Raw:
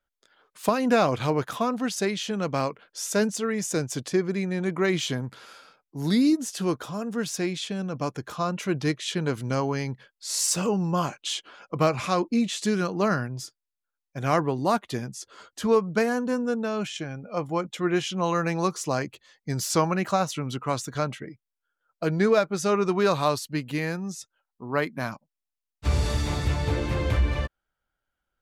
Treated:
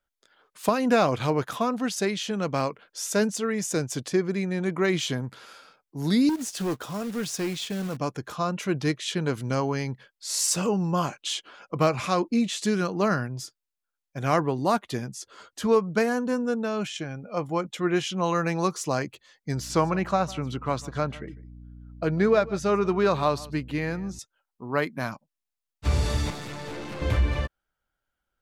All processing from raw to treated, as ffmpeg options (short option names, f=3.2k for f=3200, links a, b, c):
-filter_complex "[0:a]asettb=1/sr,asplit=3[a][b][c];[a]atrim=end=6.294[d];[b]atrim=start=6.29:end=7.97,asetpts=PTS-STARTPTS,afade=t=in:d=0.004:c=qsin,afade=t=out:st=1.676:d=0.004:c=qsin,acrusher=bits=3:mode=log:mix=0:aa=0.000001,asoftclip=type=hard:threshold=-23.5dB[e];[c]atrim=start=7.966[f];[d][e]acrossfade=d=0.004:c1=hsin:c2=qsin[g];[g][f]acrossfade=d=0.004:c1=qsin:c2=hsin,asettb=1/sr,asplit=3[h][i][j];[h]atrim=end=19.554[k];[i]atrim=start=19.55:end=24.19,asetpts=PTS-STARTPTS,afade=t=in:d=0.004:c=qsin,afade=t=out:st=4.636:d=0.004:c=qsin,highshelf=f=5.6k:g=-12,aecho=1:1:150:0.1,atrim=end_sample=204624,aeval=exprs='val(0)+0.00708*(sin(2*PI*60*n/s)+sin(2*PI*2*60*n/s)/2+sin(2*PI*3*60*n/s)/3+sin(2*PI*4*60*n/s)/4+sin(2*PI*5*60*n/s)/5)':c=same[l];[j]atrim=start=24.186[m];[k][l]acrossfade=d=0.004:c1=hsin:c2=qsin[n];[n][m]acrossfade=d=0.004:c1=qsin:c2=hsin,asettb=1/sr,asplit=3[o][p][q];[o]atrim=end=26.304[r];[p]atrim=start=26.3:end=27.02,asetpts=PTS-STARTPTS,afade=t=in:d=0.004:c=qsin,afade=t=out:st=0.716:d=0.004:c=qsin,highpass=f=150:w=0.5412,highpass=f=150:w=1.3066,aeval=exprs='(tanh(44.7*val(0)+0.6)-tanh(0.6))/44.7':c=same[s];[q]atrim=start=27.016[t];[r][s]acrossfade=d=0.004:c1=hsin:c2=qsin[u];[u][t]acrossfade=d=0.004:c1=qsin:c2=hsin"